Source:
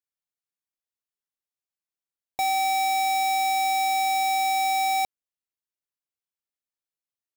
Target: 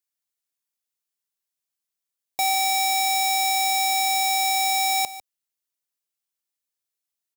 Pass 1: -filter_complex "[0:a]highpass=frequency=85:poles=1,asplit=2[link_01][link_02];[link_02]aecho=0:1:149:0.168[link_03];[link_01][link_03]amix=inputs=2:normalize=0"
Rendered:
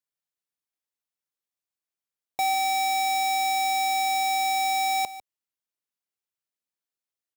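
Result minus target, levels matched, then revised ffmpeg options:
8,000 Hz band −4.0 dB
-filter_complex "[0:a]highpass=frequency=85:poles=1,highshelf=frequency=3300:gain=9,asplit=2[link_01][link_02];[link_02]aecho=0:1:149:0.168[link_03];[link_01][link_03]amix=inputs=2:normalize=0"

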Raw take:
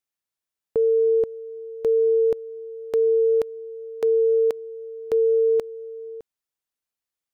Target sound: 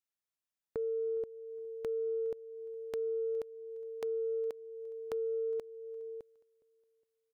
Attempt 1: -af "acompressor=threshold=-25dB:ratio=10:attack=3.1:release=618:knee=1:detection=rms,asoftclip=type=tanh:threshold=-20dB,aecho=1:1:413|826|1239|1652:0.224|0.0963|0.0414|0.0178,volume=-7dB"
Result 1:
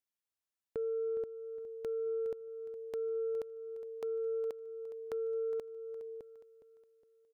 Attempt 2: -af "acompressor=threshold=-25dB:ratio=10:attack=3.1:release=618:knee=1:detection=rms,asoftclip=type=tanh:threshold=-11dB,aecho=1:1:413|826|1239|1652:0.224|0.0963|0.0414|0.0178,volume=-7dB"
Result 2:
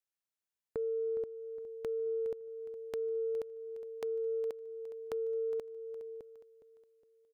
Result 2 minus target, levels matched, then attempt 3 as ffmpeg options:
echo-to-direct +12 dB
-af "acompressor=threshold=-25dB:ratio=10:attack=3.1:release=618:knee=1:detection=rms,asoftclip=type=tanh:threshold=-11dB,aecho=1:1:413|826|1239:0.0562|0.0242|0.0104,volume=-7dB"

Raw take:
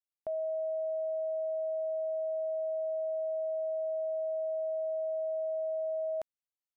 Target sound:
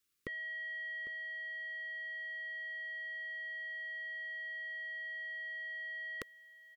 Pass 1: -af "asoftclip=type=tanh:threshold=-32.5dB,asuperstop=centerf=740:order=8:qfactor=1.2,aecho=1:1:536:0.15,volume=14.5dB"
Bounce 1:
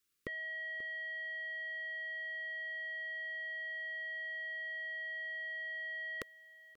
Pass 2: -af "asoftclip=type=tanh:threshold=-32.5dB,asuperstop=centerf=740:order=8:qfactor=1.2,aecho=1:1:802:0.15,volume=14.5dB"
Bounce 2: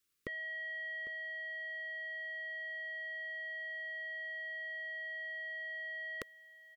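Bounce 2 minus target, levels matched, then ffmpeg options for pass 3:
500 Hz band +6.5 dB
-af "asoftclip=type=tanh:threshold=-32.5dB,asuperstop=centerf=740:order=8:qfactor=1.2,equalizer=frequency=650:width=3.8:gain=-8.5,aecho=1:1:802:0.15,volume=14.5dB"

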